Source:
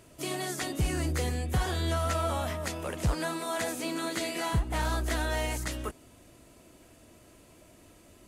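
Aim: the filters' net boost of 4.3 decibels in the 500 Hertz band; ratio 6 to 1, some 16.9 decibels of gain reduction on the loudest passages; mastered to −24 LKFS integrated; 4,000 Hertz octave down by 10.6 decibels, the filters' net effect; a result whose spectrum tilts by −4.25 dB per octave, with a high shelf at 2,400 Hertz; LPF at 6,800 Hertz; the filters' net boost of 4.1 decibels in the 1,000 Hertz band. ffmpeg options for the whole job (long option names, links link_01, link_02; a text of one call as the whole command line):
ffmpeg -i in.wav -af "lowpass=6800,equalizer=frequency=500:width_type=o:gain=4.5,equalizer=frequency=1000:width_type=o:gain=5.5,highshelf=frequency=2400:gain=-7,equalizer=frequency=4000:width_type=o:gain=-7.5,acompressor=threshold=-42dB:ratio=6,volume=21.5dB" out.wav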